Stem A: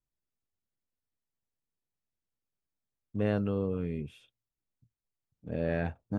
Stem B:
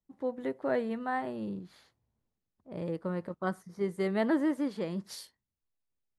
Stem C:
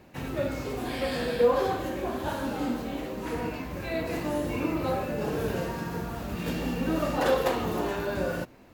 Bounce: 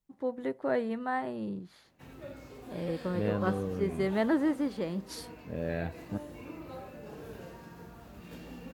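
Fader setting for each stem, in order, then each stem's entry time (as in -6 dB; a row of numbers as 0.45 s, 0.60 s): -3.0 dB, +0.5 dB, -15.5 dB; 0.00 s, 0.00 s, 1.85 s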